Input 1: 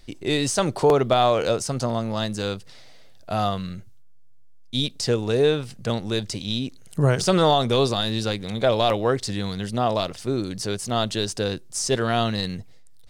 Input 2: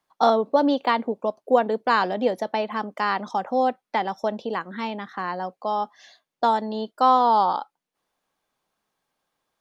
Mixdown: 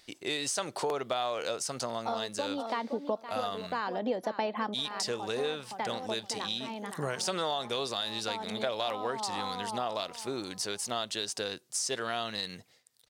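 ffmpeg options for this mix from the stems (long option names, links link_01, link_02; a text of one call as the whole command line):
ffmpeg -i stem1.wav -i stem2.wav -filter_complex "[0:a]highpass=frequency=830:poles=1,volume=-0.5dB,asplit=2[link_01][link_02];[1:a]adelay=1850,volume=3dB,asplit=2[link_03][link_04];[link_04]volume=-22dB[link_05];[link_02]apad=whole_len=505331[link_06];[link_03][link_06]sidechaincompress=threshold=-41dB:ratio=8:attack=21:release=580[link_07];[link_05]aecho=0:1:516|1032|1548|2064:1|0.27|0.0729|0.0197[link_08];[link_01][link_07][link_08]amix=inputs=3:normalize=0,acompressor=threshold=-31dB:ratio=3" out.wav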